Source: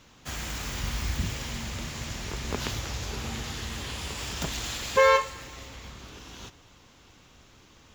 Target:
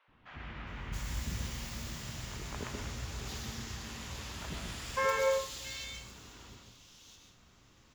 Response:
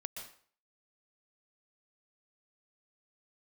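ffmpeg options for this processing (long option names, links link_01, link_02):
-filter_complex "[0:a]acrossover=split=580|2800[link_01][link_02][link_03];[link_01]adelay=80[link_04];[link_03]adelay=670[link_05];[link_04][link_02][link_05]amix=inputs=3:normalize=0[link_06];[1:a]atrim=start_sample=2205[link_07];[link_06][link_07]afir=irnorm=-1:irlink=0,volume=-4.5dB"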